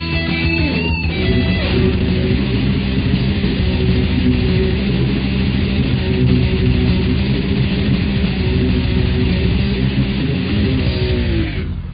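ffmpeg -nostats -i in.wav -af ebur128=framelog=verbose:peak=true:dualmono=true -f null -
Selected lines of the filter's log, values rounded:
Integrated loudness:
  I:         -13.4 LUFS
  Threshold: -23.4 LUFS
Loudness range:
  LRA:         0.8 LU
  Threshold: -33.3 LUFS
  LRA low:   -13.6 LUFS
  LRA high:  -12.8 LUFS
True peak:
  Peak:       -1.5 dBFS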